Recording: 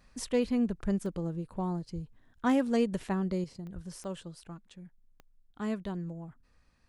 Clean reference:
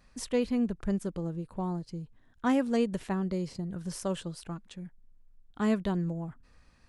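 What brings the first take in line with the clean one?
clip repair -18 dBFS; de-click; 1.94–2.06 HPF 140 Hz 24 dB/oct; 3.74–3.86 HPF 140 Hz 24 dB/oct; gain 0 dB, from 3.44 s +6.5 dB

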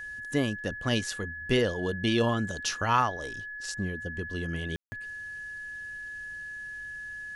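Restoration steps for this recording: notch 1700 Hz, Q 30; room tone fill 4.76–4.92

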